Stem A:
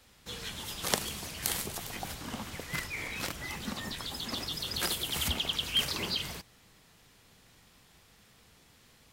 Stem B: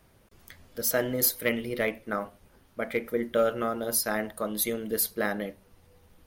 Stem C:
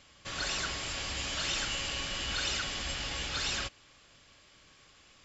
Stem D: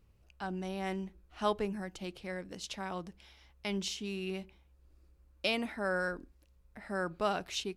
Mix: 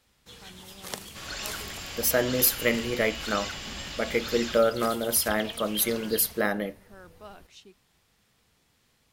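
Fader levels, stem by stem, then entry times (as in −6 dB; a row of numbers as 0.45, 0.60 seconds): −7.0, +2.5, −2.5, −14.5 decibels; 0.00, 1.20, 0.90, 0.00 seconds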